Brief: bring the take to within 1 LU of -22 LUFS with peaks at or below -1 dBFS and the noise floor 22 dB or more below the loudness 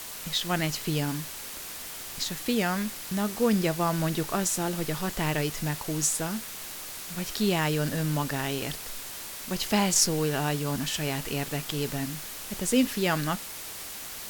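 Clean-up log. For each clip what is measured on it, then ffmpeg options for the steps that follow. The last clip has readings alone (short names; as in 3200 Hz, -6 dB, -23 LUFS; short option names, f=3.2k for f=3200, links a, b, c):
noise floor -40 dBFS; noise floor target -51 dBFS; loudness -28.5 LUFS; peak -9.5 dBFS; loudness target -22.0 LUFS
-> -af "afftdn=nr=11:nf=-40"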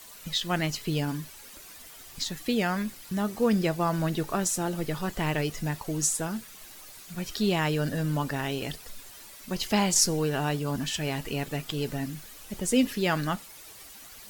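noise floor -48 dBFS; noise floor target -51 dBFS
-> -af "afftdn=nr=6:nf=-48"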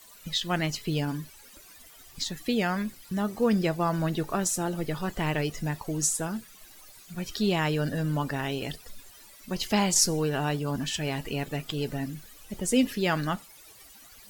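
noise floor -52 dBFS; loudness -28.5 LUFS; peak -9.5 dBFS; loudness target -22.0 LUFS
-> -af "volume=6.5dB"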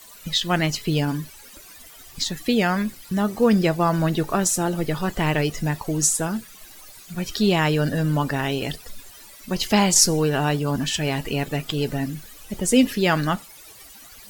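loudness -22.0 LUFS; peak -3.0 dBFS; noise floor -45 dBFS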